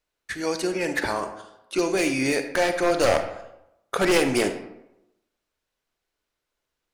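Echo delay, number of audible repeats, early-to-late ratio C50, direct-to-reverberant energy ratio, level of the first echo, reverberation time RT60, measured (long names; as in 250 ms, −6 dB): no echo audible, no echo audible, 9.5 dB, 8.0 dB, no echo audible, 0.85 s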